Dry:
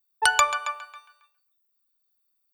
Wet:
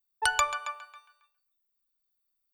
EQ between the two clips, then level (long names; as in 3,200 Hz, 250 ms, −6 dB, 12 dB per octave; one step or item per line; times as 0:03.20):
low-shelf EQ 86 Hz +11.5 dB
−6.0 dB